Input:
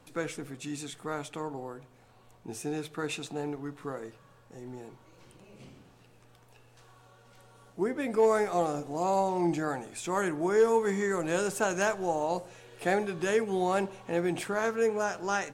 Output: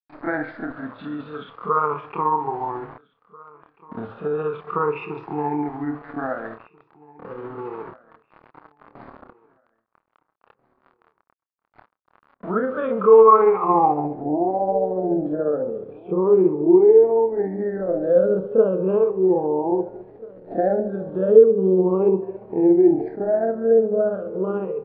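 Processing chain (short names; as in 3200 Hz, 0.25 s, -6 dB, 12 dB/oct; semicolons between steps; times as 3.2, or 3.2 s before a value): moving spectral ripple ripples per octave 0.75, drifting -0.56 Hz, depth 18 dB; on a send at -10 dB: reverb, pre-delay 3 ms; on the sum: sample gate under -44.5 dBFS; in parallel at -1 dB: compressor, threshold -34 dBFS, peak gain reduction 20 dB; on the sum: elliptic low-pass 4700 Hz; low shelf 150 Hz -7 dB; feedback echo 1.027 s, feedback 20%, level -24 dB; granular stretch 1.6×, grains 0.142 s; low-pass sweep 1200 Hz -> 460 Hz, 13.65–14.38; gain +4.5 dB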